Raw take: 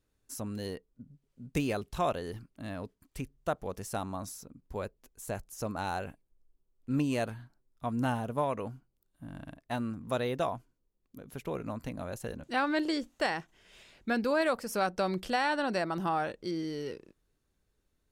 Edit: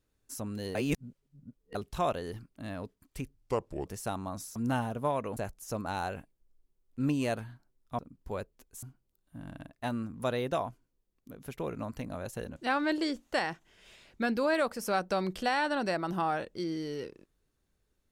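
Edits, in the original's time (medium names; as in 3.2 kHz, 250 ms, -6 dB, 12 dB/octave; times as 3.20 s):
0.75–1.75 s: reverse
3.35–3.73 s: speed 75%
4.43–5.27 s: swap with 7.89–8.70 s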